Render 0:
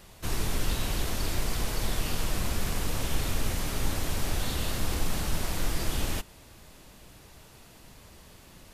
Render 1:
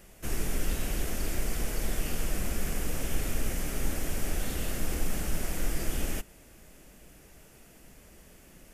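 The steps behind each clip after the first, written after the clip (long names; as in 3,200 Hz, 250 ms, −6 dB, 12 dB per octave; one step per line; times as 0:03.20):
graphic EQ with 15 bands 100 Hz −10 dB, 1,000 Hz −9 dB, 4,000 Hz −11 dB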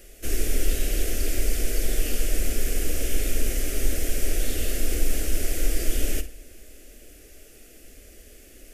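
phaser with its sweep stopped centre 400 Hz, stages 4
flutter between parallel walls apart 9.2 metres, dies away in 0.24 s
on a send at −13.5 dB: convolution reverb RT60 0.95 s, pre-delay 4 ms
on the sum: level +6.5 dB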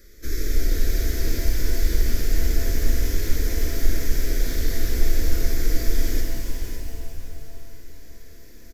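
phaser with its sweep stopped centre 2,800 Hz, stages 6
single-tap delay 557 ms −9 dB
reverb with rising layers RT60 3.1 s, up +7 semitones, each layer −8 dB, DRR 1 dB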